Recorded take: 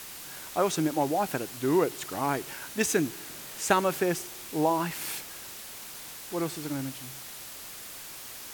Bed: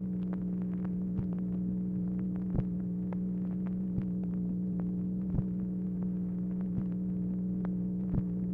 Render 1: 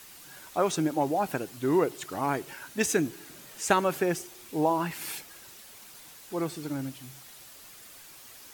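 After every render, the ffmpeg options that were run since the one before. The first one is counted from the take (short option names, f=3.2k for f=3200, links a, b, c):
-af "afftdn=nr=8:nf=-43"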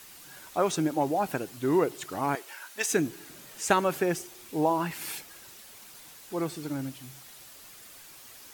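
-filter_complex "[0:a]asettb=1/sr,asplit=3[a][b][c];[a]atrim=end=2.354[d];[b]atrim=start=2.35:end=2.92,asetpts=PTS-STARTPTS,afade=t=in:d=0.004:c=qsin,afade=t=out:st=0.566:d=0.004:c=qsin,highpass=660[e];[c]atrim=start=2.916[f];[d][e]acrossfade=d=0.004:c1=hsin:c2=qsin[g];[g][f]acrossfade=d=0.004:c1=qsin:c2=hsin"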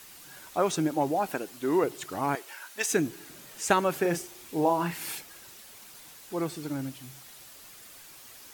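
-filter_complex "[0:a]asettb=1/sr,asplit=3[a][b][c];[a]atrim=end=1.194[d];[b]atrim=start=1.19:end=1.84,asetpts=PTS-STARTPTS,afade=t=in:d=0.004:c=qsin,afade=t=out:st=0.646:d=0.004:c=qsin,equalizer=f=110:w=1.5:g=-14.5[e];[c]atrim=start=1.836[f];[d][e]acrossfade=d=0.004:c1=hsin:c2=qsin[g];[g][f]acrossfade=d=0.004:c1=qsin:c2=hsin,asettb=1/sr,asplit=3[h][i][j];[h]atrim=end=3.994[k];[i]atrim=start=3.99:end=5.15,asetpts=PTS-STARTPTS,afade=t=in:d=0.004:c=qsin,afade=t=out:st=1.156:d=0.004:c=qsin,asplit=2[l][m];[m]adelay=35,volume=-8.5dB[n];[l][n]amix=inputs=2:normalize=0,atrim=end_sample=51156[o];[j]atrim=start=5.146[p];[k][o]acrossfade=d=0.004:c1=hsin:c2=qsin[q];[q][p]acrossfade=d=0.004:c1=qsin:c2=hsin"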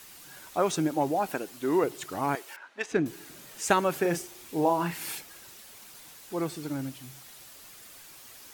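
-filter_complex "[0:a]asettb=1/sr,asplit=3[a][b][c];[a]atrim=end=2.564[d];[b]atrim=start=2.56:end=3.06,asetpts=PTS-STARTPTS,afade=t=in:d=0.004:c=qsin,afade=t=out:st=0.496:d=0.004:c=qsin,adynamicsmooth=sensitivity=1:basefreq=2.3k[e];[c]atrim=start=3.056[f];[d][e]acrossfade=d=0.004:c1=hsin:c2=qsin[g];[g][f]acrossfade=d=0.004:c1=qsin:c2=hsin"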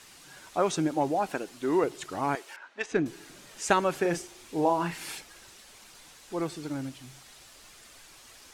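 -af "lowpass=8.7k,asubboost=boost=2.5:cutoff=63"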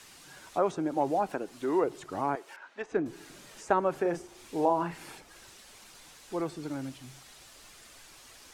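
-filter_complex "[0:a]acrossover=split=310|1400[a][b][c];[a]alimiter=level_in=11dB:limit=-24dB:level=0:latency=1,volume=-11dB[d];[c]acompressor=threshold=-49dB:ratio=6[e];[d][b][e]amix=inputs=3:normalize=0"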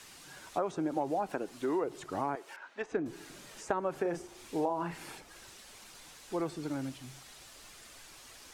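-af "acompressor=threshold=-28dB:ratio=6"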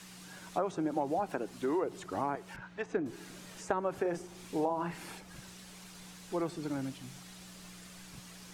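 -filter_complex "[1:a]volume=-21.5dB[a];[0:a][a]amix=inputs=2:normalize=0"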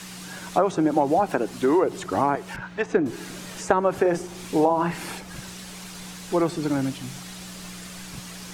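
-af "volume=12dB"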